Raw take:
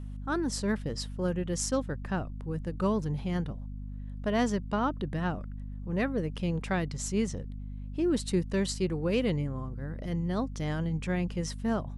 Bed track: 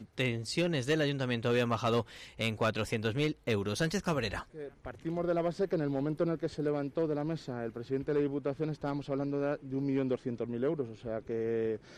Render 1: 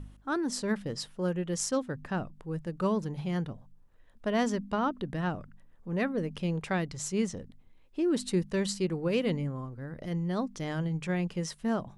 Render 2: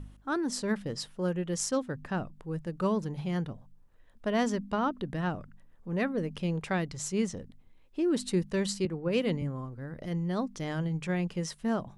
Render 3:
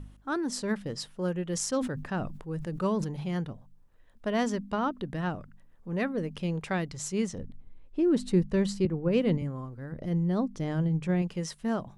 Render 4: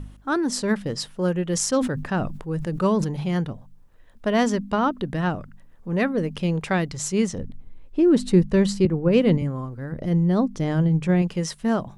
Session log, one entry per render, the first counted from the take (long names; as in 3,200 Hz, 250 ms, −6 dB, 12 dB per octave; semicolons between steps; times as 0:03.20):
hum removal 50 Hz, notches 5
0:08.85–0:09.42: multiband upward and downward expander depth 70%
0:01.46–0:03.29: level that may fall only so fast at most 62 dB per second; 0:07.38–0:09.38: spectral tilt −2 dB per octave; 0:09.92–0:11.22: tilt shelving filter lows +5 dB, about 760 Hz
level +7.5 dB